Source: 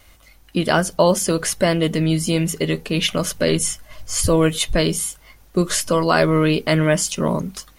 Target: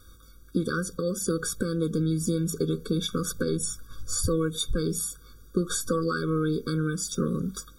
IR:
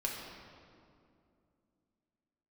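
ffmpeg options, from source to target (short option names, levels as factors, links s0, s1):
-af "acompressor=threshold=0.0794:ratio=6,asuperstop=centerf=2500:order=8:qfactor=3.6,afftfilt=real='re*eq(mod(floor(b*sr/1024/550),2),0)':imag='im*eq(mod(floor(b*sr/1024/550),2),0)':win_size=1024:overlap=0.75"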